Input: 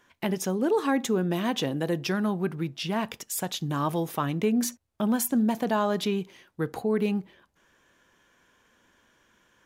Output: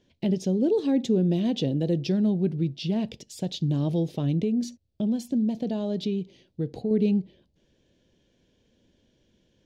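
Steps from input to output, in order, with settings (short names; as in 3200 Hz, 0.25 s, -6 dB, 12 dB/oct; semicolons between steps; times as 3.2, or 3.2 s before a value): EQ curve 140 Hz 0 dB, 590 Hz -7 dB, 1200 Hz -30 dB, 2900 Hz -11 dB, 4400 Hz -6 dB, 13000 Hz -30 dB; 4.43–6.91 compressor 1.5:1, threshold -37 dBFS, peak gain reduction 5.5 dB; gain +6.5 dB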